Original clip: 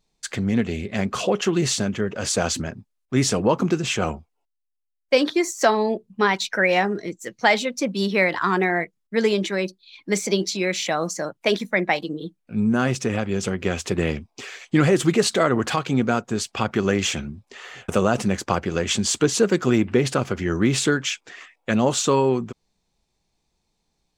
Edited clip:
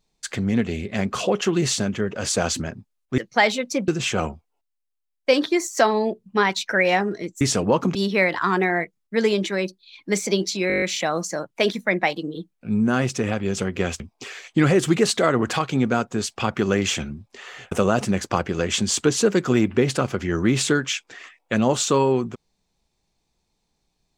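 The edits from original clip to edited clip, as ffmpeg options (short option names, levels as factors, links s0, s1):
-filter_complex "[0:a]asplit=13[s0][s1][s2][s3][s4][s5][s6][s7][s8][s9][s10][s11][s12];[s0]atrim=end=3.182[s13];[s1]atrim=start=7.248:end=7.952[s14];[s2]atrim=start=3.718:end=7.252[s15];[s3]atrim=start=3.178:end=3.722[s16];[s4]atrim=start=7.948:end=10.702[s17];[s5]atrim=start=10.678:end=10.702[s18];[s6]atrim=start=10.678:end=10.702[s19];[s7]atrim=start=10.678:end=10.702[s20];[s8]atrim=start=10.678:end=10.702[s21];[s9]atrim=start=10.678:end=10.702[s22];[s10]atrim=start=10.678:end=10.702[s23];[s11]atrim=start=10.678:end=13.862[s24];[s12]atrim=start=14.168[s25];[s13][s14]acrossfade=d=0.004:c1=hsin:c2=hsin[s26];[s26][s15]acrossfade=d=0.004:c1=hsin:c2=hsin[s27];[s27][s16]acrossfade=d=0.004:c1=hsin:c2=hsin[s28];[s28][s17]acrossfade=d=0.004:c1=hsin:c2=hsin[s29];[s29][s18]acrossfade=d=0.004:c1=hsin:c2=hsin[s30];[s30][s19]acrossfade=d=0.004:c1=hsin:c2=hsin[s31];[s31][s20]acrossfade=d=0.004:c1=hsin:c2=hsin[s32];[s32][s21]acrossfade=d=0.004:c1=hsin:c2=hsin[s33];[s33][s22]acrossfade=d=0.004:c1=hsin:c2=hsin[s34];[s34][s23]acrossfade=d=0.004:c1=hsin:c2=hsin[s35];[s35][s24]acrossfade=d=0.004:c1=hsin:c2=hsin[s36];[s36][s25]acrossfade=d=0.004:c1=hsin:c2=hsin"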